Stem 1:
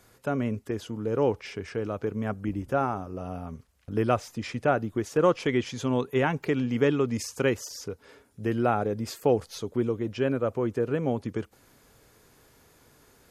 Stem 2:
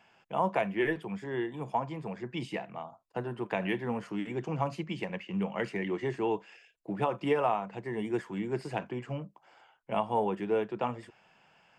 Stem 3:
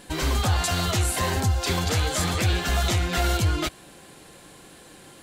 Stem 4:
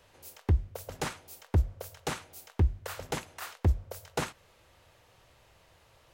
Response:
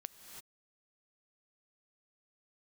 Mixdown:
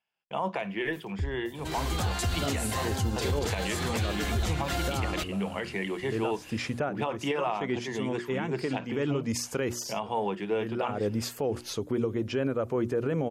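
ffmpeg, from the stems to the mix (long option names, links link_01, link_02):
-filter_complex "[0:a]adelay=2150,volume=3dB[link_01];[1:a]equalizer=frequency=3900:width_type=o:width=1.6:gain=8.5,volume=0.5dB,asplit=2[link_02][link_03];[2:a]adelay=1550,volume=-6dB[link_04];[3:a]asubboost=boost=5.5:cutoff=240,adelay=700,volume=-11.5dB[link_05];[link_03]apad=whole_len=681438[link_06];[link_01][link_06]sidechaincompress=threshold=-39dB:ratio=8:attack=12:release=195[link_07];[link_07][link_02][link_04][link_05]amix=inputs=4:normalize=0,agate=range=-27dB:threshold=-52dB:ratio=16:detection=peak,bandreject=frequency=60:width_type=h:width=6,bandreject=frequency=120:width_type=h:width=6,bandreject=frequency=180:width_type=h:width=6,bandreject=frequency=240:width_type=h:width=6,bandreject=frequency=300:width_type=h:width=6,bandreject=frequency=360:width_type=h:width=6,alimiter=limit=-19.5dB:level=0:latency=1:release=76"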